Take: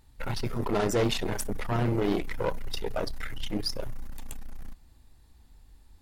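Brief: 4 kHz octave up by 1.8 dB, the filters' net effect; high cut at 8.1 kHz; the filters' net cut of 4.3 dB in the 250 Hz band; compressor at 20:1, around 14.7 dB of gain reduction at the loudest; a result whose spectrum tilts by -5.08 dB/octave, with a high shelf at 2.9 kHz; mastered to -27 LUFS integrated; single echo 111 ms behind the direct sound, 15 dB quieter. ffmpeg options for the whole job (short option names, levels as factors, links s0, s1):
-af "lowpass=8100,equalizer=f=250:t=o:g=-6,highshelf=f=2900:g=-6.5,equalizer=f=4000:t=o:g=8,acompressor=threshold=0.0112:ratio=20,aecho=1:1:111:0.178,volume=8.91"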